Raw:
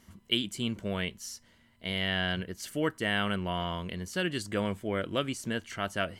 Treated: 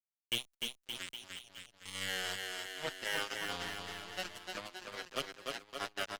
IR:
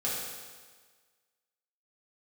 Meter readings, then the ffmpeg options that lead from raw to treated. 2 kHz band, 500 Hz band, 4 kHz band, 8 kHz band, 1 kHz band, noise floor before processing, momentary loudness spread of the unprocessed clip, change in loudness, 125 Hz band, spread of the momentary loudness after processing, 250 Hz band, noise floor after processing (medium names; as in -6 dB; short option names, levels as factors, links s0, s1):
-6.0 dB, -11.5 dB, -5.0 dB, -2.5 dB, -7.5 dB, -63 dBFS, 7 LU, -7.5 dB, -19.5 dB, 9 LU, -19.0 dB, under -85 dBFS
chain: -filter_complex "[0:a]acrossover=split=370|3200[s0][s1][s2];[s0]acompressor=threshold=0.00501:ratio=5[s3];[s3][s1][s2]amix=inputs=3:normalize=0,acrusher=bits=3:mix=0:aa=0.5,aecho=1:1:300|570|813|1032|1229:0.631|0.398|0.251|0.158|0.1,asplit=2[s4][s5];[s5]adelay=6.4,afreqshift=0.46[s6];[s4][s6]amix=inputs=2:normalize=1,volume=0.708"